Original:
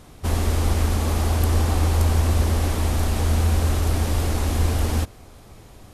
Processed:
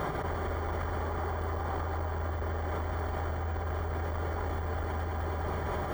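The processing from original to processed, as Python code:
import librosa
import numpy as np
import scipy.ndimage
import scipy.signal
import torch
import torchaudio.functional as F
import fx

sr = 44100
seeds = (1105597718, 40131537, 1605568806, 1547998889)

p1 = fx.low_shelf(x, sr, hz=400.0, db=-7.5)
p2 = p1 + 0.4 * np.pad(p1, (int(5.0 * sr / 1000.0), 0))[:len(p1)]
p3 = np.clip(p2, -10.0 ** (-24.5 / 20.0), 10.0 ** (-24.5 / 20.0))
p4 = p3 + fx.echo_feedback(p3, sr, ms=209, feedback_pct=56, wet_db=-12.0, dry=0)
p5 = (np.kron(p4[::2], np.eye(2)[0]) * 2)[:len(p4)]
p6 = scipy.signal.sosfilt(scipy.signal.butter(2, 55.0, 'highpass', fs=sr, output='sos'), p5)
p7 = p6 * (1.0 - 0.9 / 2.0 + 0.9 / 2.0 * np.cos(2.0 * np.pi * 4.0 * (np.arange(len(p6)) / sr)))
p8 = scipy.signal.savgol_filter(p7, 41, 4, mode='constant')
p9 = fx.peak_eq(p8, sr, hz=220.0, db=-12.0, octaves=0.34)
p10 = fx.env_flatten(p9, sr, amount_pct=100)
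y = p10 * 10.0 ** (-4.5 / 20.0)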